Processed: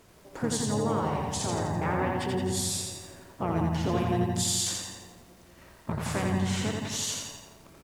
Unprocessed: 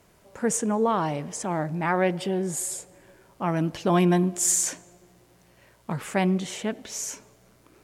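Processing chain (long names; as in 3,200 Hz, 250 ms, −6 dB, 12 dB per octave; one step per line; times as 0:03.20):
downward compressor 3 to 1, threshold −32 dBFS, peak gain reduction 11.5 dB
pitch-shifted copies added −12 semitones −6 dB, −7 semitones −5 dB, +3 semitones −17 dB
feedback echo with a low-pass in the loop 171 ms, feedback 43%, low-pass 2,000 Hz, level −5.5 dB
feedback echo at a low word length 85 ms, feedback 55%, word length 10 bits, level −3 dB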